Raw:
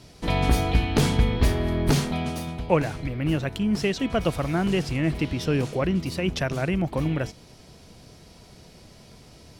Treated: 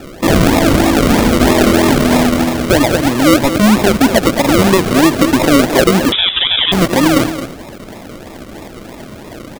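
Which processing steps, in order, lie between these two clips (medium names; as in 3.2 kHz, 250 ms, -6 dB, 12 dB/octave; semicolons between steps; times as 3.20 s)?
high-pass 190 Hz 12 dB/octave; comb 3.3 ms, depth 59%; in parallel at -1.5 dB: compression, threshold -32 dBFS, peak gain reduction 17 dB; on the sum: decimation with a swept rate 41×, swing 60% 3.1 Hz; delay 219 ms -11.5 dB; 6.12–6.72 s: frequency inversion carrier 3.7 kHz; loudness maximiser +15.5 dB; trim -1 dB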